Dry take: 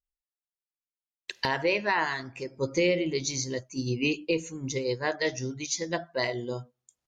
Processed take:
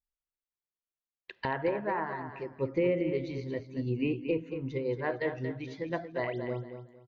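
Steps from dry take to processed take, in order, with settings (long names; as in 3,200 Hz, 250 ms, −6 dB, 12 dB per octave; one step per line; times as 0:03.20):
0:01.69–0:02.28: parametric band 3,000 Hz −14 dB 1.2 octaves
0:06.18–0:06.39: sound drawn into the spectrogram rise 260–7,200 Hz −41 dBFS
treble cut that deepens with the level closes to 2,200 Hz, closed at −22.5 dBFS
high-frequency loss of the air 470 metres
repeating echo 229 ms, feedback 25%, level −9 dB
level −1.5 dB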